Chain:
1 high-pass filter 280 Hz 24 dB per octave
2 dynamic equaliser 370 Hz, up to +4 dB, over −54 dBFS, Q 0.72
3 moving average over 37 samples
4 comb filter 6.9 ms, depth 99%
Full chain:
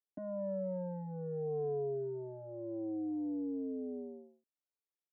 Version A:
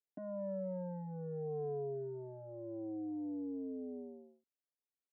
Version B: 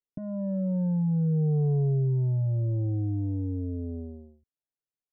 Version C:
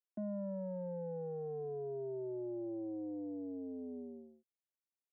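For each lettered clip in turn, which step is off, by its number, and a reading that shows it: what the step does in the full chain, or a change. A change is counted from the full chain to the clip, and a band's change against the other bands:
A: 2, 500 Hz band −2.0 dB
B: 1, change in crest factor −2.0 dB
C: 4, change in momentary loudness spread −3 LU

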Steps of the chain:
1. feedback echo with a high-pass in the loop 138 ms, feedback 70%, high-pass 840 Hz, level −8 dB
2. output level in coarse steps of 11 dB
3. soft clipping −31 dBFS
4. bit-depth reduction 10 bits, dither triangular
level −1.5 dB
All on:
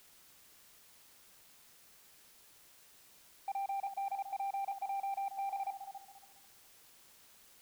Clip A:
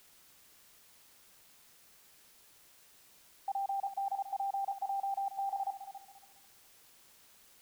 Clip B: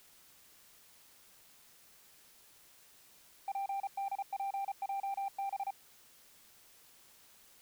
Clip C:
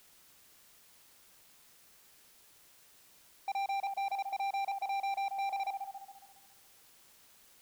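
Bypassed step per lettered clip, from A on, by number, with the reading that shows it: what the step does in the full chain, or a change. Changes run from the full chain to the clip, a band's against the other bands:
3, distortion level −19 dB
1, 500 Hz band −2.5 dB
2, change in crest factor −2.5 dB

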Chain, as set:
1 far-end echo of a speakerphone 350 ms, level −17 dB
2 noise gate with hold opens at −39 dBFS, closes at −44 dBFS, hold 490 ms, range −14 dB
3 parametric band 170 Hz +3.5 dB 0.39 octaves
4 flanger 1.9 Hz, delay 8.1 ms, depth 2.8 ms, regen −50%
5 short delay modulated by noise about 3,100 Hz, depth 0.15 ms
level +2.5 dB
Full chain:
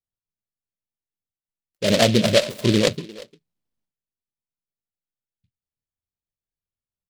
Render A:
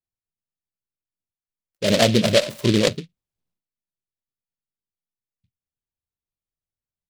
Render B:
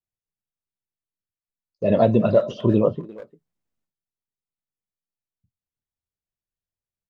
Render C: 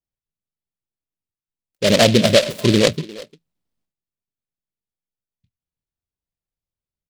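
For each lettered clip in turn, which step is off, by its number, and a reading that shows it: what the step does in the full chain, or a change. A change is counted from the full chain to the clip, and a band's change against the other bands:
1, change in momentary loudness spread −6 LU
5, 4 kHz band −21.5 dB
4, change in integrated loudness +3.5 LU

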